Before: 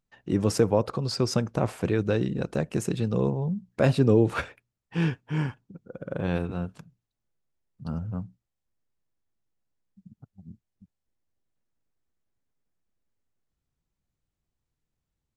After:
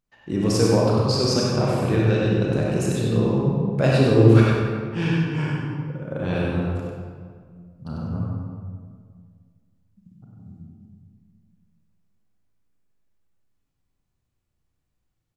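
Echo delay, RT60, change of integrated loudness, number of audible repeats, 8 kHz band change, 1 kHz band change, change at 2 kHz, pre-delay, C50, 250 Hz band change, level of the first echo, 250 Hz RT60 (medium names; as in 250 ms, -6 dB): 97 ms, 1.9 s, +6.0 dB, 1, no reading, +5.5 dB, +6.0 dB, 27 ms, -3.0 dB, +6.0 dB, -3.5 dB, 2.4 s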